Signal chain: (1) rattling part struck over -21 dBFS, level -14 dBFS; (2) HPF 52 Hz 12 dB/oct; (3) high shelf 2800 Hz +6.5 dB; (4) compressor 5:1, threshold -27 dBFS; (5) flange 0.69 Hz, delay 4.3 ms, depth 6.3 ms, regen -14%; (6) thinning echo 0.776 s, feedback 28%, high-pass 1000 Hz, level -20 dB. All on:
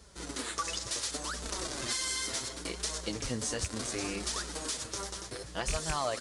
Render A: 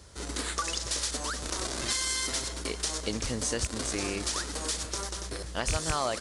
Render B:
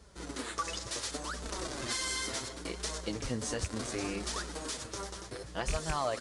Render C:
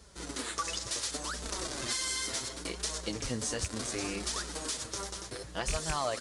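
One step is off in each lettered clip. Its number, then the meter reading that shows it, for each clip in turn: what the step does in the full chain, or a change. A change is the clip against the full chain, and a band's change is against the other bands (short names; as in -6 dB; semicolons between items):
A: 5, loudness change +3.5 LU; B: 3, 8 kHz band -4.5 dB; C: 6, echo-to-direct -21.5 dB to none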